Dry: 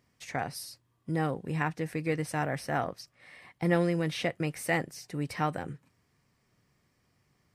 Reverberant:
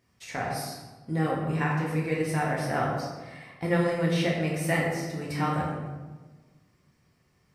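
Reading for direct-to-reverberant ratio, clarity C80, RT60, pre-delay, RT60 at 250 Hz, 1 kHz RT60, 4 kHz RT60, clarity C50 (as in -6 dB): -4.0 dB, 4.0 dB, 1.3 s, 6 ms, 1.6 s, 1.2 s, 0.80 s, 1.5 dB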